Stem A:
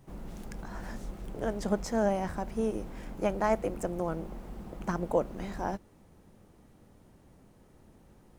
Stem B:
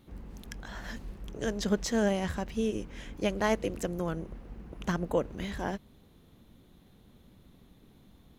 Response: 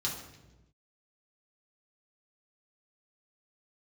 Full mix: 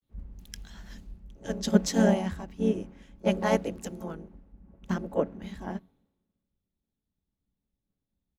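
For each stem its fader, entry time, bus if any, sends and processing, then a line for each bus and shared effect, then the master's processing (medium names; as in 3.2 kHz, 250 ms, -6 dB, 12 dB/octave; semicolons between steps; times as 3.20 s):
-2.5 dB, 0.00 s, send -23 dB, vocoder on a held chord minor triad, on F#3
+2.0 dB, 19 ms, polarity flipped, no send, auto duck -7 dB, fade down 1.40 s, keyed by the first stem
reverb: on, RT60 1.1 s, pre-delay 3 ms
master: three bands expanded up and down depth 100%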